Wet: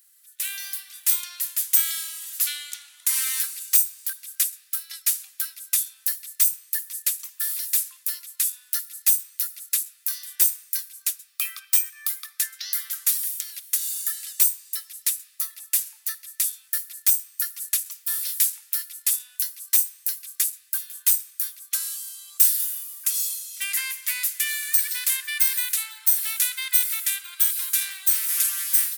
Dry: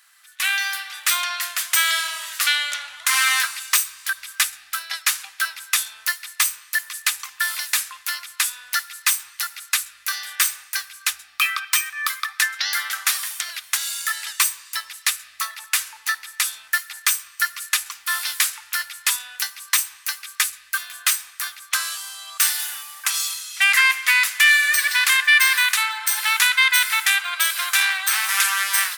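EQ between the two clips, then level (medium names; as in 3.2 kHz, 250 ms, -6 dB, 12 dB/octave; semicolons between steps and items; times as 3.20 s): differentiator; treble shelf 9.9 kHz +9.5 dB; -6.5 dB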